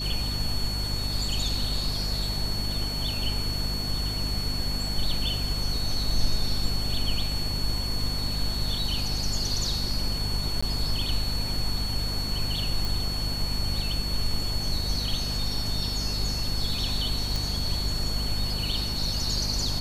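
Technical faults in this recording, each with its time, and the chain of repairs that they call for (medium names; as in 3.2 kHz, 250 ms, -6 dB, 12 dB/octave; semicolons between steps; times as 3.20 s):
hum 50 Hz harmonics 5 -32 dBFS
whine 4.4 kHz -31 dBFS
10.61–10.62 s: dropout 15 ms
12.85 s: pop
17.36 s: pop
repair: de-click; de-hum 50 Hz, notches 5; band-stop 4.4 kHz, Q 30; interpolate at 10.61 s, 15 ms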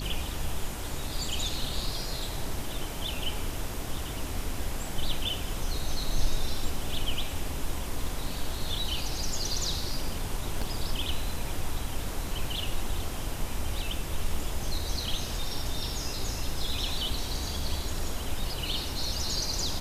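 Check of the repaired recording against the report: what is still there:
nothing left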